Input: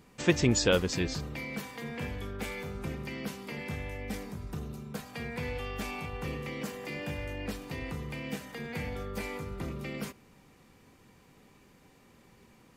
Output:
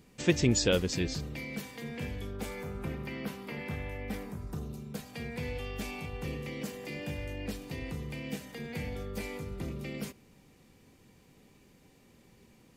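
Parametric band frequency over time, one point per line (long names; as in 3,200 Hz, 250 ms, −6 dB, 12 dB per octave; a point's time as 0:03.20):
parametric band −7 dB 1.4 octaves
0:02.19 1,100 Hz
0:02.90 6,900 Hz
0:04.16 6,900 Hz
0:04.83 1,200 Hz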